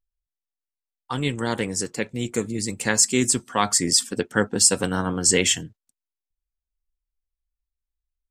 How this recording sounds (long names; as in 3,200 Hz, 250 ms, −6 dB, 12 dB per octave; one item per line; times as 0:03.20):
background noise floor −89 dBFS
spectral slope −2.5 dB per octave